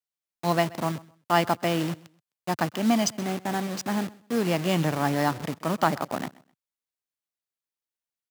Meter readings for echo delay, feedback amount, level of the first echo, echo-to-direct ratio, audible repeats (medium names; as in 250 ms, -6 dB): 129 ms, 24%, -22.0 dB, -22.0 dB, 2